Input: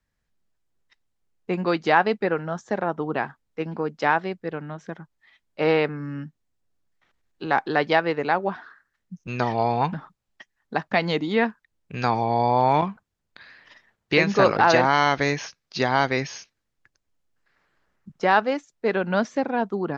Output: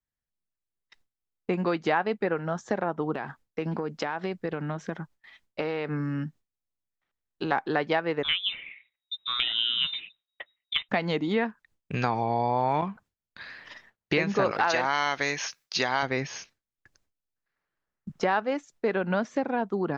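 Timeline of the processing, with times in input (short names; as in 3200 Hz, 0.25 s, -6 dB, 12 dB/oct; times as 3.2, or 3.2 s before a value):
3.14–7.52 compressor, threshold -28 dBFS
8.23–10.89 inverted band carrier 3800 Hz
14.51–16.03 tilt +3 dB/oct
whole clip: gate with hold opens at -50 dBFS; dynamic EQ 4900 Hz, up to -5 dB, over -44 dBFS, Q 1.3; compressor 2.5:1, threshold -32 dBFS; gain +5 dB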